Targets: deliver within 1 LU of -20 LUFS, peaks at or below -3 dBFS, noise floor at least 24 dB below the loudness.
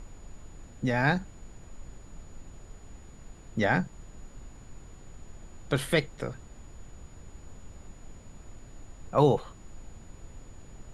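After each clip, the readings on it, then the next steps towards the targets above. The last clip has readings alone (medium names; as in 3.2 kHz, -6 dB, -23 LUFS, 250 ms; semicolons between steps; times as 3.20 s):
steady tone 6.9 kHz; tone level -61 dBFS; noise floor -50 dBFS; noise floor target -53 dBFS; loudness -28.5 LUFS; peak level -9.0 dBFS; loudness target -20.0 LUFS
-> band-stop 6.9 kHz, Q 30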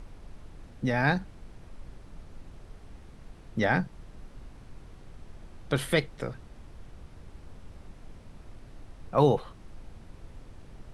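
steady tone not found; noise floor -51 dBFS; noise floor target -53 dBFS
-> noise print and reduce 6 dB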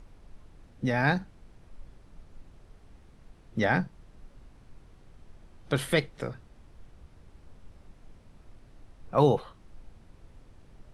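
noise floor -56 dBFS; loudness -28.5 LUFS; peak level -9.0 dBFS; loudness target -20.0 LUFS
-> trim +8.5 dB; peak limiter -3 dBFS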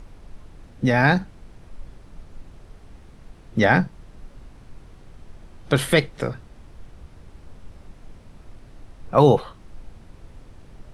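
loudness -20.5 LUFS; peak level -3.0 dBFS; noise floor -48 dBFS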